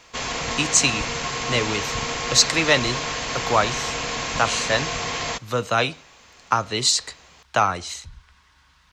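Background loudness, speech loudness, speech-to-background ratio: -26.0 LUFS, -22.0 LUFS, 4.0 dB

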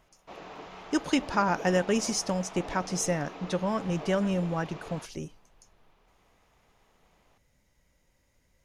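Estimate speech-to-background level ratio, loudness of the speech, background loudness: 14.0 dB, -29.5 LUFS, -43.5 LUFS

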